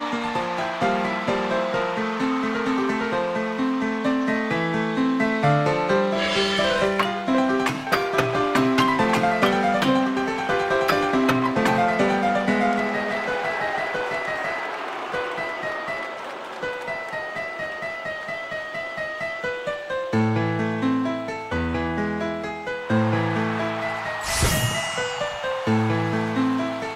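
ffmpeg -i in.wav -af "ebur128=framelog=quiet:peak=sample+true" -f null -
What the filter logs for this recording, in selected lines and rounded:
Integrated loudness:
  I:         -23.3 LUFS
  Threshold: -33.3 LUFS
Loudness range:
  LRA:         8.0 LU
  Threshold: -43.2 LUFS
  LRA low:   -28.6 LUFS
  LRA high:  -20.7 LUFS
Sample peak:
  Peak:       -5.9 dBFS
True peak:
  Peak:       -5.9 dBFS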